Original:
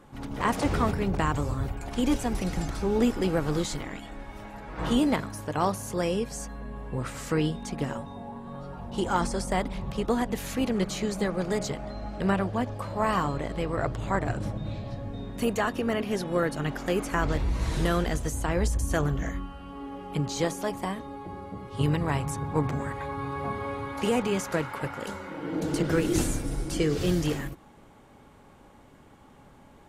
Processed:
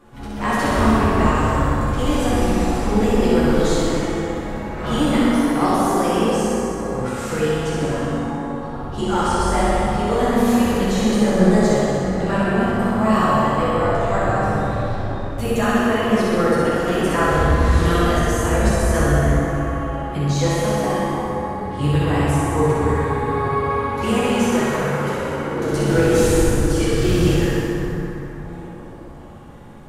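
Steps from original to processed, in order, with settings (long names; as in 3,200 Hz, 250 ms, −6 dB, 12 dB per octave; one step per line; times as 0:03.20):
multi-voice chorus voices 6, 0.73 Hz, delay 11 ms, depth 3 ms
flutter between parallel walls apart 10.8 metres, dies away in 1 s
dense smooth reverb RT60 4.1 s, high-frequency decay 0.45×, DRR −5.5 dB
level +4 dB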